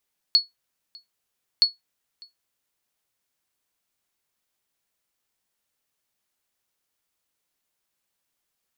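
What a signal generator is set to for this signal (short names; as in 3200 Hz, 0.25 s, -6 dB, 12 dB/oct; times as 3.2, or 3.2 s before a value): sonar ping 4380 Hz, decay 0.16 s, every 1.27 s, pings 2, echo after 0.60 s, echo -27.5 dB -8.5 dBFS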